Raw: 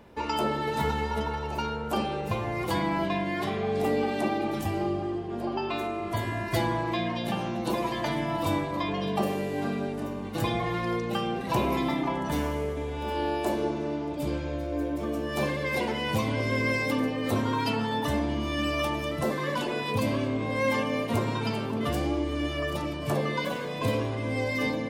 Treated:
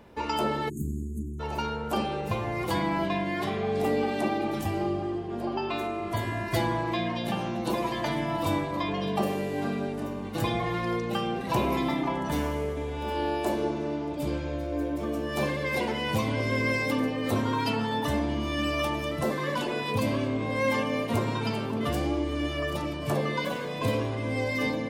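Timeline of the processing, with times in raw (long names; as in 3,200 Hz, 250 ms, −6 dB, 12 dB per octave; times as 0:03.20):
0:00.69–0:01.40: time-frequency box erased 420–6,300 Hz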